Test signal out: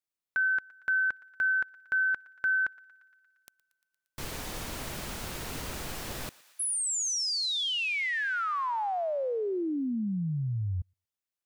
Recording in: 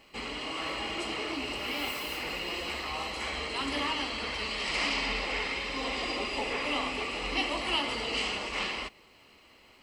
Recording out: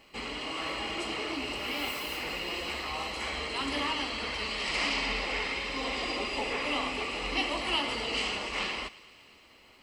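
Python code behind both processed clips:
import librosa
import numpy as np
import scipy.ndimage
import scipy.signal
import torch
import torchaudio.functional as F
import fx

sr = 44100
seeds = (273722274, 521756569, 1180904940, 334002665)

y = fx.echo_thinned(x, sr, ms=116, feedback_pct=77, hz=830.0, wet_db=-20.0)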